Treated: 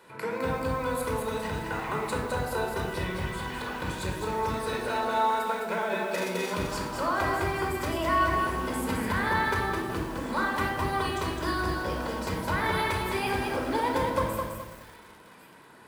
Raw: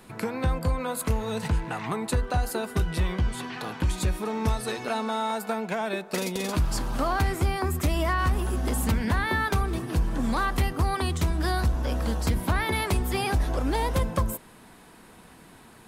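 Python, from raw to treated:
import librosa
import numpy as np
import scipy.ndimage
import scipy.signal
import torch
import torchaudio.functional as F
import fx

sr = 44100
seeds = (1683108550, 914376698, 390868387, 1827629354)

p1 = fx.highpass(x, sr, hz=750.0, slope=6)
p2 = fx.high_shelf(p1, sr, hz=2600.0, db=-10.5)
p3 = p2 + fx.echo_wet_highpass(p2, sr, ms=1096, feedback_pct=45, hz=1600.0, wet_db=-20, dry=0)
p4 = fx.room_shoebox(p3, sr, seeds[0], volume_m3=2800.0, walls='furnished', distance_m=4.8)
y = fx.echo_crushed(p4, sr, ms=210, feedback_pct=35, bits=8, wet_db=-4.0)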